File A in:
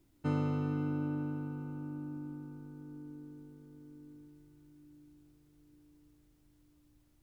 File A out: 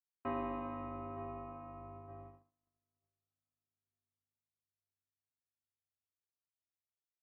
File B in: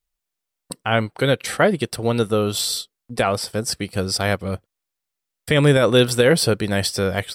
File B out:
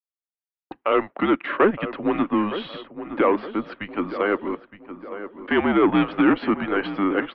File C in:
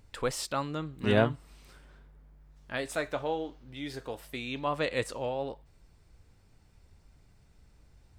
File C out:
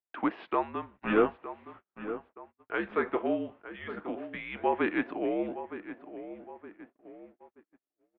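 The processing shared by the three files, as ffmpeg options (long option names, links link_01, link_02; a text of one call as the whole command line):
ffmpeg -i in.wav -filter_complex "[0:a]aresample=16000,asoftclip=type=tanh:threshold=-13dB,aresample=44100,highpass=frequency=200:width_type=q:width=0.5412,highpass=frequency=200:width_type=q:width=1.307,lowpass=frequency=3400:width_type=q:width=0.5176,lowpass=frequency=3400:width_type=q:width=0.7071,lowpass=frequency=3400:width_type=q:width=1.932,afreqshift=-200,acrossover=split=230 2400:gain=0.0708 1 0.126[link_01][link_02][link_03];[link_01][link_02][link_03]amix=inputs=3:normalize=0,asplit=2[link_04][link_05];[link_05]adelay=915,lowpass=frequency=2100:poles=1,volume=-12dB,asplit=2[link_06][link_07];[link_07]adelay=915,lowpass=frequency=2100:poles=1,volume=0.46,asplit=2[link_08][link_09];[link_09]adelay=915,lowpass=frequency=2100:poles=1,volume=0.46,asplit=2[link_10][link_11];[link_11]adelay=915,lowpass=frequency=2100:poles=1,volume=0.46,asplit=2[link_12][link_13];[link_13]adelay=915,lowpass=frequency=2100:poles=1,volume=0.46[link_14];[link_04][link_06][link_08][link_10][link_12][link_14]amix=inputs=6:normalize=0,agate=range=-38dB:threshold=-56dB:ratio=16:detection=peak,volume=5dB" out.wav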